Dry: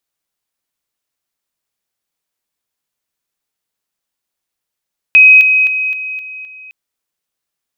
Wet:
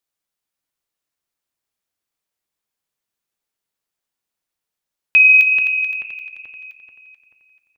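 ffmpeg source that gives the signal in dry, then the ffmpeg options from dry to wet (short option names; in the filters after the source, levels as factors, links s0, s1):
-f lavfi -i "aevalsrc='pow(10,(-1.5-6*floor(t/0.26))/20)*sin(2*PI*2530*t)':d=1.56:s=44100"
-filter_complex "[0:a]flanger=delay=8.5:depth=3.5:regen=-80:speed=1.2:shape=triangular,asplit=2[s0][s1];[s1]adelay=435,lowpass=f=2100:p=1,volume=0.631,asplit=2[s2][s3];[s3]adelay=435,lowpass=f=2100:p=1,volume=0.47,asplit=2[s4][s5];[s5]adelay=435,lowpass=f=2100:p=1,volume=0.47,asplit=2[s6][s7];[s7]adelay=435,lowpass=f=2100:p=1,volume=0.47,asplit=2[s8][s9];[s9]adelay=435,lowpass=f=2100:p=1,volume=0.47,asplit=2[s10][s11];[s11]adelay=435,lowpass=f=2100:p=1,volume=0.47[s12];[s2][s4][s6][s8][s10][s12]amix=inputs=6:normalize=0[s13];[s0][s13]amix=inputs=2:normalize=0"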